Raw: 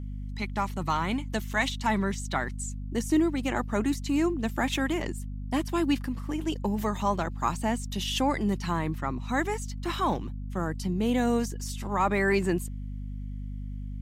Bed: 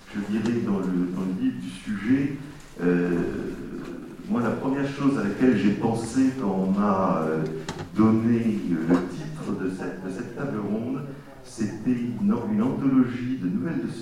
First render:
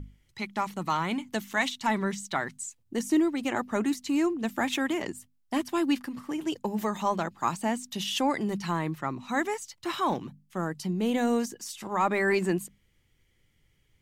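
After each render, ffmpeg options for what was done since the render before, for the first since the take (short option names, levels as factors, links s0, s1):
-af "bandreject=f=50:t=h:w=6,bandreject=f=100:t=h:w=6,bandreject=f=150:t=h:w=6,bandreject=f=200:t=h:w=6,bandreject=f=250:t=h:w=6"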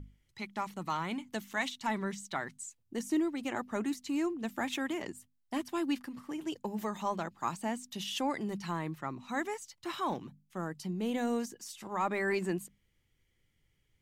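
-af "volume=0.473"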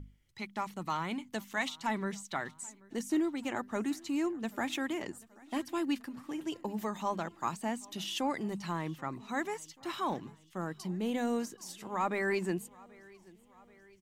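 -af "aecho=1:1:783|1566|2349|3132:0.0631|0.0372|0.022|0.013"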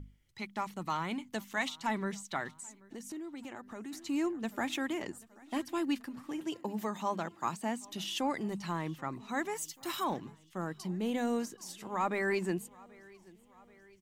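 -filter_complex "[0:a]asplit=3[s0][s1][s2];[s0]afade=t=out:st=2.51:d=0.02[s3];[s1]acompressor=threshold=0.00794:ratio=4:attack=3.2:release=140:knee=1:detection=peak,afade=t=in:st=2.51:d=0.02,afade=t=out:st=3.92:d=0.02[s4];[s2]afade=t=in:st=3.92:d=0.02[s5];[s3][s4][s5]amix=inputs=3:normalize=0,asettb=1/sr,asplit=3[s6][s7][s8];[s6]atrim=end=6.424[s9];[s7]atrim=start=6.42:end=7.85,asetpts=PTS-STARTPTS,afade=t=in:d=0.004:c=qsin,afade=t=out:st=1.426:d=0.004:c=qsin,highpass=85[s10];[s8]atrim=start=7.846[s11];[s9][s10]acrossfade=d=0.004:c1=hsin:c2=qsin[s12];[s12][s11]acrossfade=d=0.004:c1=qsin:c2=hsin,asplit=3[s13][s14][s15];[s13]afade=t=out:st=9.55:d=0.02[s16];[s14]aemphasis=mode=production:type=50fm,afade=t=in:st=9.55:d=0.02,afade=t=out:st=10.03:d=0.02[s17];[s15]afade=t=in:st=10.03:d=0.02[s18];[s16][s17][s18]amix=inputs=3:normalize=0"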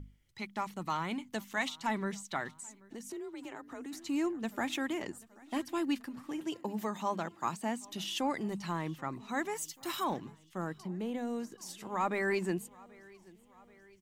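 -filter_complex "[0:a]asettb=1/sr,asplit=3[s0][s1][s2];[s0]atrim=end=3.104[s3];[s1]atrim=start=3.1:end=3.86,asetpts=PTS-STARTPTS,afade=t=in:d=0.004:c=qsin,afade=t=out:st=0.756:d=0.004:c=qsin,afreqshift=39[s4];[s2]atrim=start=3.856[s5];[s3][s4]acrossfade=d=0.004:c1=hsin:c2=qsin[s6];[s6][s5]acrossfade=d=0.004:c1=qsin:c2=hsin,asettb=1/sr,asplit=3[s7][s8][s9];[s7]atrim=end=10.784[s10];[s8]atrim=start=10.78:end=11.52,asetpts=PTS-STARTPTS,afade=t=in:d=0.004:c=qsin,afade=t=out:st=0.736:d=0.004:c=qsin,acrossover=split=120|300|710|2000[s11][s12][s13][s14][s15];[s11]acompressor=threshold=0.00141:ratio=3[s16];[s12]acompressor=threshold=0.01:ratio=3[s17];[s13]acompressor=threshold=0.00891:ratio=3[s18];[s14]acompressor=threshold=0.00251:ratio=3[s19];[s15]acompressor=threshold=0.00112:ratio=3[s20];[s16][s17][s18][s19][s20]amix=inputs=5:normalize=0[s21];[s9]atrim=start=11.516[s22];[s10][s21]acrossfade=d=0.004:c1=hsin:c2=qsin[s23];[s23][s22]acrossfade=d=0.004:c1=qsin:c2=hsin"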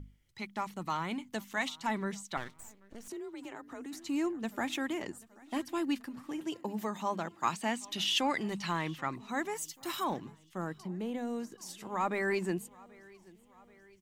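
-filter_complex "[0:a]asettb=1/sr,asplit=3[s0][s1][s2];[s0]atrim=end=2.374[s3];[s1]atrim=start=2.37:end=3.08,asetpts=PTS-STARTPTS,afade=t=in:d=0.004:c=qsin,afade=t=out:st=0.706:d=0.004:c=qsin,aeval=exprs='max(val(0),0)':c=same[s4];[s2]atrim=start=3.076[s5];[s3][s4]acrossfade=d=0.004:c1=hsin:c2=qsin[s6];[s6][s5]acrossfade=d=0.004:c1=qsin:c2=hsin,asettb=1/sr,asplit=3[s7][s8][s9];[s7]atrim=end=7.434[s10];[s8]atrim=start=7.43:end=9.16,asetpts=PTS-STARTPTS,afade=t=in:d=0.004:c=qsin,afade=t=out:st=1.726:d=0.004:c=qsin,equalizer=f=2900:t=o:w=2.4:g=8.5[s11];[s9]atrim=start=9.156[s12];[s10][s11]acrossfade=d=0.004:c1=hsin:c2=qsin[s13];[s13][s12]acrossfade=d=0.004:c1=qsin:c2=hsin"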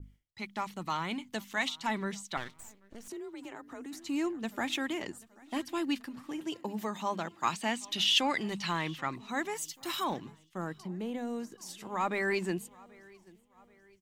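-af "agate=range=0.0224:threshold=0.00158:ratio=3:detection=peak,adynamicequalizer=threshold=0.00398:dfrequency=3500:dqfactor=0.87:tfrequency=3500:tqfactor=0.87:attack=5:release=100:ratio=0.375:range=2.5:mode=boostabove:tftype=bell"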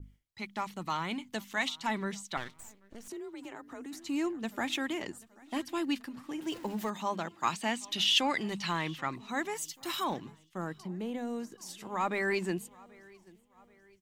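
-filter_complex "[0:a]asettb=1/sr,asplit=3[s0][s1][s2];[s0]atrim=end=6.424[s3];[s1]atrim=start=6.42:end=6.9,asetpts=PTS-STARTPTS,afade=t=in:d=0.004:c=qsin,afade=t=out:st=0.476:d=0.004:c=qsin,aeval=exprs='val(0)+0.5*0.00596*sgn(val(0))':c=same[s4];[s2]atrim=start=6.896[s5];[s3][s4]acrossfade=d=0.004:c1=hsin:c2=qsin[s6];[s6][s5]acrossfade=d=0.004:c1=qsin:c2=hsin"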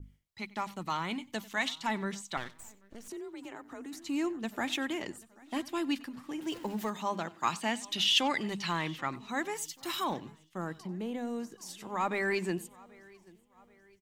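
-filter_complex "[0:a]asplit=2[s0][s1];[s1]adelay=93.29,volume=0.0891,highshelf=f=4000:g=-2.1[s2];[s0][s2]amix=inputs=2:normalize=0"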